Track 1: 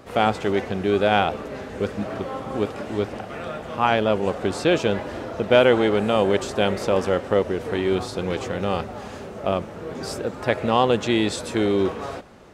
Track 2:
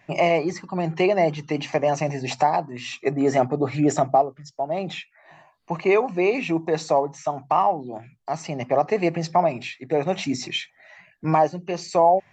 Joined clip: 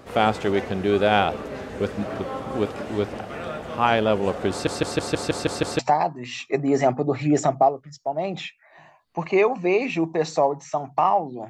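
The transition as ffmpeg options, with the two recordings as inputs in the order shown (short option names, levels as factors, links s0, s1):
-filter_complex "[0:a]apad=whole_dur=11.49,atrim=end=11.49,asplit=8[s0][s1][s2][s3][s4][s5][s6][s7];[s0]atrim=end=4.672[s8];[s1]atrim=start=4.508:end=4.672[s9];[s2]atrim=start=4.508:end=4.672[s10];[s3]atrim=start=4.508:end=4.672[s11];[s4]atrim=start=4.508:end=4.672[s12];[s5]atrim=start=4.508:end=4.672[s13];[s6]atrim=start=4.508:end=4.672[s14];[s7]atrim=start=4.508:end=4.672[s15];[1:a]atrim=start=2.318:end=8.02[s16];[s8][s9]acrossfade=d=0.004:c1=hsin:c2=hsin[s17];[s17][s10]acrossfade=d=0.004:c1=hsin:c2=hsin[s18];[s18][s11]acrossfade=d=0.004:c1=hsin:c2=hsin[s19];[s19][s12]acrossfade=d=0.004:c1=hsin:c2=hsin[s20];[s20][s13]acrossfade=d=0.004:c1=hsin:c2=hsin[s21];[s21][s14]acrossfade=d=0.004:c1=hsin:c2=hsin[s22];[s22][s15]acrossfade=d=0.004:c1=hsin:c2=hsin[s23];[s23][s16]acrossfade=d=0.004:c1=hsin:c2=hsin"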